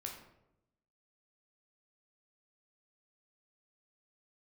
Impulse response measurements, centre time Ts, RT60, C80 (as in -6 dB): 31 ms, 0.85 s, 8.5 dB